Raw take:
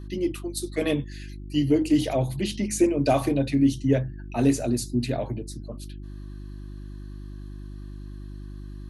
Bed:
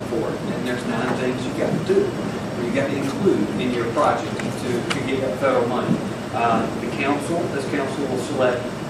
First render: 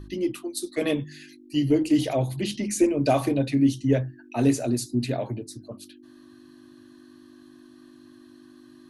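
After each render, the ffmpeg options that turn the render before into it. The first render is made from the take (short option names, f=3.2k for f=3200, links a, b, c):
-af "bandreject=f=50:t=h:w=4,bandreject=f=100:t=h:w=4,bandreject=f=150:t=h:w=4,bandreject=f=200:t=h:w=4"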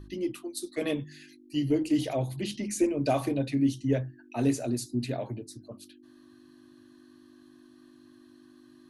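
-af "volume=-5dB"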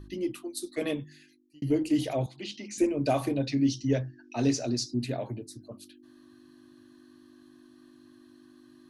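-filter_complex "[0:a]asettb=1/sr,asplit=3[a][b][c];[a]atrim=end=2.264[d];[b]atrim=start=2.26:end=2.78,asetpts=PTS-STARTPTS,afade=t=in:d=0.004:c=qsin,afade=t=out:st=0.516:d=0.004:c=qsin,highpass=350,equalizer=f=400:t=q:w=4:g=-4,equalizer=f=590:t=q:w=4:g=-7,equalizer=f=980:t=q:w=4:g=-4,equalizer=f=1.7k:t=q:w=4:g=-6,lowpass=f=6.4k:w=0.5412,lowpass=f=6.4k:w=1.3066[e];[c]atrim=start=2.776[f];[d][e]acrossfade=d=0.004:c1=hsin:c2=qsin[g];[g][f]acrossfade=d=0.004:c1=qsin:c2=hsin,asettb=1/sr,asplit=3[h][i][j];[h]atrim=end=3.434[k];[i]atrim=start=3.43:end=4.94,asetpts=PTS-STARTPTS,afade=t=in:d=0.004:c=qsin,afade=t=out:st=1.506:d=0.004:c=qsin,lowpass=f=5.4k:t=q:w=4.2[l];[j]atrim=start=4.936[m];[k][l]acrossfade=d=0.004:c1=hsin:c2=qsin[n];[n][m]acrossfade=d=0.004:c1=qsin:c2=hsin,asplit=2[o][p];[o]atrim=end=1.62,asetpts=PTS-STARTPTS,afade=t=out:st=0.81:d=0.81[q];[p]atrim=start=1.62,asetpts=PTS-STARTPTS,afade=t=in:d=0.004:c=hsin[r];[q][r]concat=n=2:v=0:a=1"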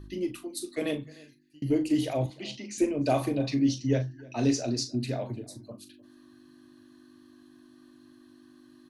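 -filter_complex "[0:a]asplit=2[a][b];[b]adelay=39,volume=-10dB[c];[a][c]amix=inputs=2:normalize=0,asplit=2[d][e];[e]adelay=303.2,volume=-22dB,highshelf=f=4k:g=-6.82[f];[d][f]amix=inputs=2:normalize=0"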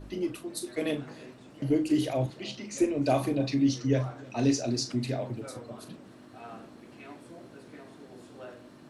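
-filter_complex "[1:a]volume=-26dB[a];[0:a][a]amix=inputs=2:normalize=0"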